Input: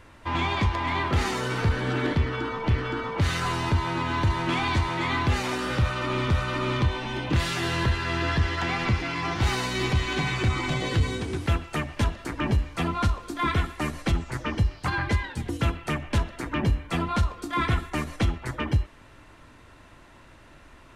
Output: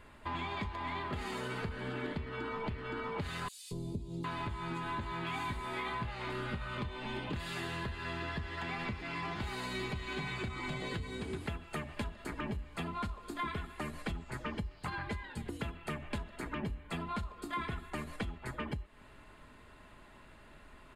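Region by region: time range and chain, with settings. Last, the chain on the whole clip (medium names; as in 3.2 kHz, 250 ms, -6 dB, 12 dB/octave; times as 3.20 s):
3.48–6.78 s: three bands offset in time highs, lows, mids 230/760 ms, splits 460/5100 Hz + upward compressor, threshold -34 dBFS + doubling 18 ms -6.5 dB
whole clip: compression, threshold -30 dBFS; peaking EQ 5.8 kHz -14.5 dB 0.21 oct; comb 4.8 ms, depth 35%; trim -5.5 dB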